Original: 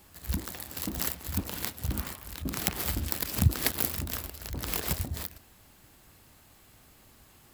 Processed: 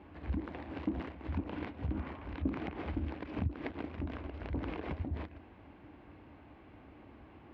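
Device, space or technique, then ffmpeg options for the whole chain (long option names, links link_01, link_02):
bass amplifier: -af "acompressor=threshold=-37dB:ratio=4,highpass=66,equalizer=frequency=70:width_type=q:width=4:gain=3,equalizer=frequency=120:width_type=q:width=4:gain=-5,equalizer=frequency=170:width_type=q:width=4:gain=-4,equalizer=frequency=300:width_type=q:width=4:gain=8,equalizer=frequency=1300:width_type=q:width=4:gain=-6,equalizer=frequency=1800:width_type=q:width=4:gain=-6,lowpass=frequency=2200:width=0.5412,lowpass=frequency=2200:width=1.3066,volume=5.5dB"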